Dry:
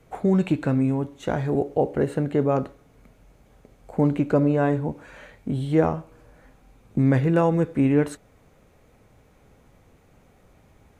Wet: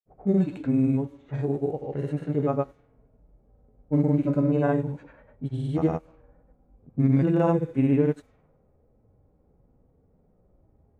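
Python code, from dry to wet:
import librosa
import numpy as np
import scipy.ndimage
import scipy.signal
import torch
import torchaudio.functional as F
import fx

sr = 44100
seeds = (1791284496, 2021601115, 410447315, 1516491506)

y = fx.hpss(x, sr, part='percussive', gain_db=-16)
y = fx.granulator(y, sr, seeds[0], grain_ms=100.0, per_s=20.0, spray_ms=100.0, spread_st=0)
y = fx.env_lowpass(y, sr, base_hz=550.0, full_db=-24.5)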